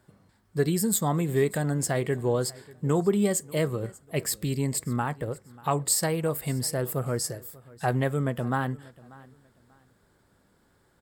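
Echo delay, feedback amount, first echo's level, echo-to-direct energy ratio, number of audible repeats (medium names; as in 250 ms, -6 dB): 589 ms, 26%, -22.0 dB, -21.5 dB, 2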